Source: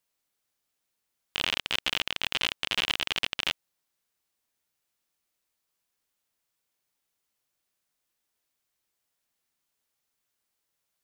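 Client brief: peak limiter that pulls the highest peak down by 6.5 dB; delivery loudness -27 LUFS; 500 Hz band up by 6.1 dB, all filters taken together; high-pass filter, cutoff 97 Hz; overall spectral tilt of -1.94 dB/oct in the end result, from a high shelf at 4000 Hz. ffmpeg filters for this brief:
-af "highpass=97,equalizer=f=500:t=o:g=7.5,highshelf=f=4k:g=5,volume=4.5dB,alimiter=limit=-8dB:level=0:latency=1"

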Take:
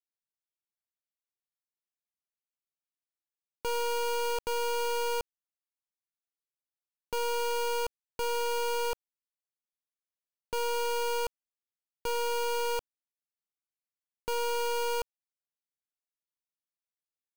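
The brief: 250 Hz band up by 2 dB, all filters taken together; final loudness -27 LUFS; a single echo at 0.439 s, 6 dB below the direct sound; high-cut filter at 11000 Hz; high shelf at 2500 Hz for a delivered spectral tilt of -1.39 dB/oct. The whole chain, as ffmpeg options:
-af "lowpass=11k,equalizer=f=250:t=o:g=3,highshelf=f=2.5k:g=-5,aecho=1:1:439:0.501,volume=5dB"

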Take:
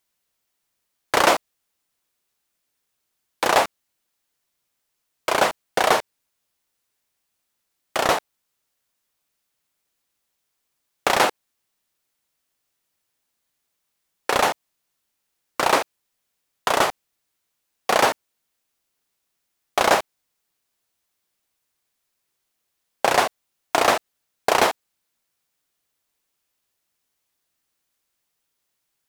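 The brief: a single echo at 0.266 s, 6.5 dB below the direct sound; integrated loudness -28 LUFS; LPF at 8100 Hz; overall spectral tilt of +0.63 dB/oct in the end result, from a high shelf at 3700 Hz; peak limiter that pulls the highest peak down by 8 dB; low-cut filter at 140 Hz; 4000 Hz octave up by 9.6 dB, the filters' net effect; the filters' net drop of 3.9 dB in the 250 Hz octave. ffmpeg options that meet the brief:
-af "highpass=140,lowpass=8.1k,equalizer=f=250:t=o:g=-5.5,highshelf=f=3.7k:g=8.5,equalizer=f=4k:t=o:g=7,alimiter=limit=-6.5dB:level=0:latency=1,aecho=1:1:266:0.473,volume=-6.5dB"

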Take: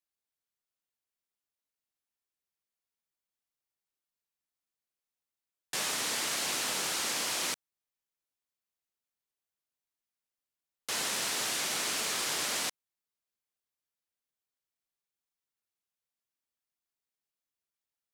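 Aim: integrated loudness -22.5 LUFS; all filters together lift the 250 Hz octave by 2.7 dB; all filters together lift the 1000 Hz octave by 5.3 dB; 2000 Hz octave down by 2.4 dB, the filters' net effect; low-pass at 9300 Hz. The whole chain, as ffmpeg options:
-af "lowpass=9.3k,equalizer=f=250:t=o:g=3,equalizer=f=1k:t=o:g=8,equalizer=f=2k:t=o:g=-5.5,volume=9dB"

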